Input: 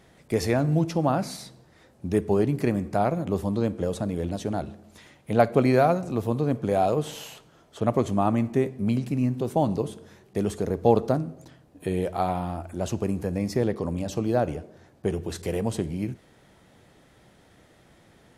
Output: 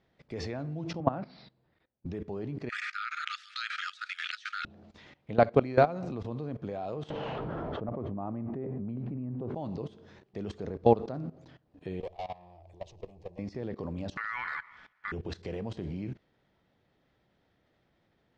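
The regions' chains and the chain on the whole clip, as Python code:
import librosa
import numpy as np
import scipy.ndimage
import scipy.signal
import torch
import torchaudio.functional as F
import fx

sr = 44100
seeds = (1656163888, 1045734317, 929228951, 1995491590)

y = fx.chain(x, sr, fx.lowpass(hz=2800.0, slope=12),
    fx.resample_bad(factor=4, down='none', up='filtered'),
    fx.band_widen(depth_pct=70), at=(1.0, 2.06))
y = fx.chain(y, sr, fx.brickwall_highpass(low_hz=1200.0),
    fx.env_flatten(amount_pct=100), at=(2.69, 4.65))
y = fx.chain(y, sr, fx.lowpass(hz=1100.0, slope=12),
    fx.env_flatten(amount_pct=100), at=(7.1, 9.55))
y = fx.chain(y, sr, fx.tube_stage(drive_db=31.0, bias=0.65),
    fx.fixed_phaser(hz=590.0, stages=4), at=(12.0, 13.39))
y = fx.chain(y, sr, fx.ring_mod(carrier_hz=1600.0),
    fx.transient(attack_db=1, sustain_db=5), at=(14.17, 15.12))
y = scipy.signal.sosfilt(scipy.signal.butter(4, 5000.0, 'lowpass', fs=sr, output='sos'), y)
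y = fx.level_steps(y, sr, step_db=18)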